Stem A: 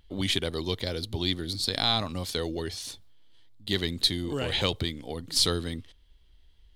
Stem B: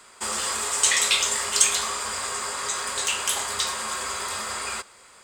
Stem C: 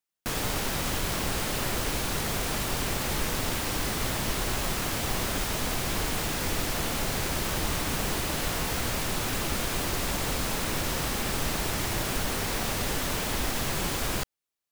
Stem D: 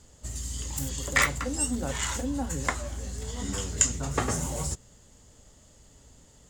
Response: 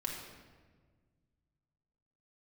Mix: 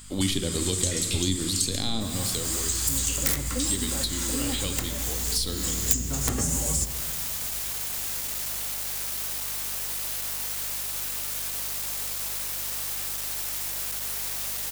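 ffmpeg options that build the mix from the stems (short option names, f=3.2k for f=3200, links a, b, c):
-filter_complex "[0:a]volume=-0.5dB,afade=t=out:st=1.98:d=0.5:silence=0.375837,asplit=3[a][b][c];[b]volume=-3dB[d];[1:a]equalizer=f=260:w=0.42:g=-14.5,volume=-7.5dB[e];[2:a]asoftclip=type=tanh:threshold=-24.5dB,highpass=470,adelay=1750,volume=-10dB[f];[3:a]aeval=exprs='(mod(5.31*val(0)+1,2)-1)/5.31':c=same,adelay=2100,volume=0dB,asplit=2[g][h];[h]volume=-9dB[i];[c]apad=whole_len=379179[j];[g][j]sidechaincompress=threshold=-46dB:ratio=8:attack=16:release=229[k];[4:a]atrim=start_sample=2205[l];[d][i]amix=inputs=2:normalize=0[m];[m][l]afir=irnorm=-1:irlink=0[n];[a][e][f][k][n]amix=inputs=5:normalize=0,acrossover=split=440[o][p];[p]acompressor=threshold=-36dB:ratio=8[q];[o][q]amix=inputs=2:normalize=0,aeval=exprs='val(0)+0.00447*(sin(2*PI*50*n/s)+sin(2*PI*2*50*n/s)/2+sin(2*PI*3*50*n/s)/3+sin(2*PI*4*50*n/s)/4+sin(2*PI*5*50*n/s)/5)':c=same,crystalizer=i=4:c=0"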